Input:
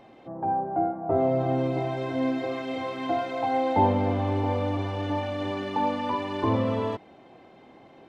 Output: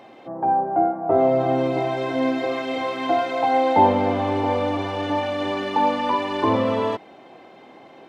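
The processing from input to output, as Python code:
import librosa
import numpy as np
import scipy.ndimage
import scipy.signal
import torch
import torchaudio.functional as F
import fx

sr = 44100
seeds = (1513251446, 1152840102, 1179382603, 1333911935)

y = fx.highpass(x, sr, hz=320.0, slope=6)
y = F.gain(torch.from_numpy(y), 7.5).numpy()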